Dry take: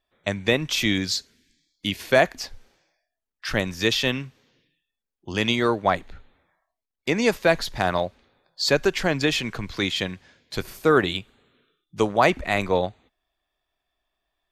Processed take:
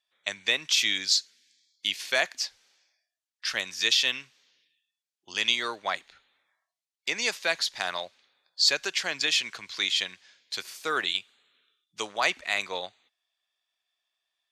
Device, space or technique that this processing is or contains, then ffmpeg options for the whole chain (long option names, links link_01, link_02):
piezo pickup straight into a mixer: -af "lowpass=5700,aderivative,volume=8.5dB"